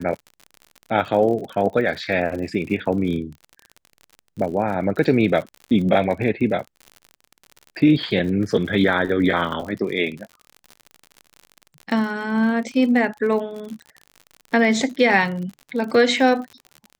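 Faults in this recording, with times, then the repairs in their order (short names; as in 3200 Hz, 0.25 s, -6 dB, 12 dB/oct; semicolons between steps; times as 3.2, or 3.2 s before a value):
crackle 58/s -30 dBFS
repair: de-click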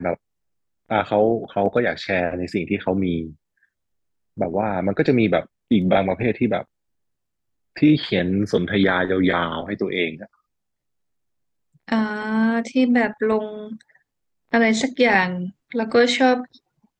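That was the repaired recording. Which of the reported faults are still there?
none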